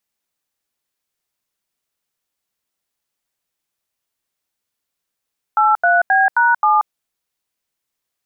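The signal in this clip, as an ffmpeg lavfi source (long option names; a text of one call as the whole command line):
ffmpeg -f lavfi -i "aevalsrc='0.224*clip(min(mod(t,0.265),0.182-mod(t,0.265))/0.002,0,1)*(eq(floor(t/0.265),0)*(sin(2*PI*852*mod(t,0.265))+sin(2*PI*1336*mod(t,0.265)))+eq(floor(t/0.265),1)*(sin(2*PI*697*mod(t,0.265))+sin(2*PI*1477*mod(t,0.265)))+eq(floor(t/0.265),2)*(sin(2*PI*770*mod(t,0.265))+sin(2*PI*1633*mod(t,0.265)))+eq(floor(t/0.265),3)*(sin(2*PI*941*mod(t,0.265))+sin(2*PI*1477*mod(t,0.265)))+eq(floor(t/0.265),4)*(sin(2*PI*852*mod(t,0.265))+sin(2*PI*1209*mod(t,0.265))))':duration=1.325:sample_rate=44100" out.wav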